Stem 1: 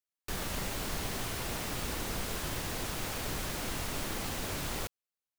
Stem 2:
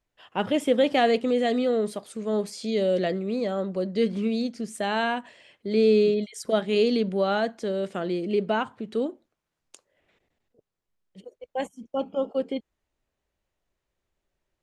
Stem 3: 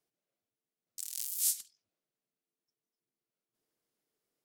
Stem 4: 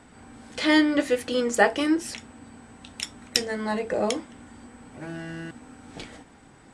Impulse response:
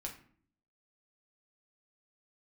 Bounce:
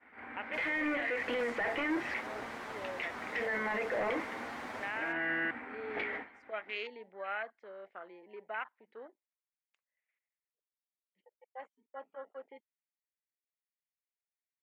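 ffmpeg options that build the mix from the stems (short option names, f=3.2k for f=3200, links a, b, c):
-filter_complex "[0:a]bandpass=f=890:t=q:w=1:csg=0,asplit=2[a][b];[b]adelay=7.5,afreqshift=2[c];[a][c]amix=inputs=2:normalize=1,adelay=250,volume=2dB[d];[1:a]afwtdn=0.0178,highpass=810,highshelf=f=3.2k:g=8,volume=-12.5dB,asplit=2[e][f];[2:a]volume=-3.5dB[g];[3:a]equalizer=f=150:w=4.1:g=-15,agate=range=-33dB:threshold=-44dB:ratio=3:detection=peak,asplit=2[h][i];[i]highpass=f=720:p=1,volume=29dB,asoftclip=type=tanh:threshold=-3dB[j];[h][j]amix=inputs=2:normalize=0,lowpass=f=1.6k:p=1,volume=-6dB,volume=-15.5dB[k];[f]apad=whole_len=248950[l];[d][l]sidechaincompress=threshold=-38dB:ratio=8:attack=6.9:release=404[m];[e][g][k]amix=inputs=3:normalize=0,lowpass=f=2.1k:t=q:w=4.4,alimiter=limit=-23.5dB:level=0:latency=1:release=206,volume=0dB[n];[m][n]amix=inputs=2:normalize=0,alimiter=level_in=2.5dB:limit=-24dB:level=0:latency=1:release=15,volume=-2.5dB"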